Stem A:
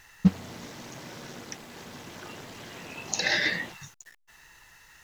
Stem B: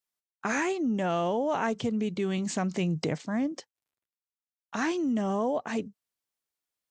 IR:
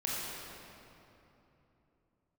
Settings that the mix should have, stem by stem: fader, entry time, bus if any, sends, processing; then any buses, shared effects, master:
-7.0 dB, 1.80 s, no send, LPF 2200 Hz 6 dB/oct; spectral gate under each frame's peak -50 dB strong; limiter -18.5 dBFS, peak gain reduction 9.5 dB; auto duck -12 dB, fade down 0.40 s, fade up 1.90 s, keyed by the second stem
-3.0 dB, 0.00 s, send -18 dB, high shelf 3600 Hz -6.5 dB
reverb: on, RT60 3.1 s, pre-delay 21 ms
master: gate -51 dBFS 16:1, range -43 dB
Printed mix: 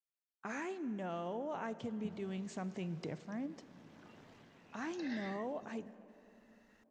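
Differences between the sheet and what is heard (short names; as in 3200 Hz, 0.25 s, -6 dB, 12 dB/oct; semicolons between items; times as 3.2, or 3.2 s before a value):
stem B -3.0 dB -> -13.5 dB; master: missing gate -51 dBFS 16:1, range -43 dB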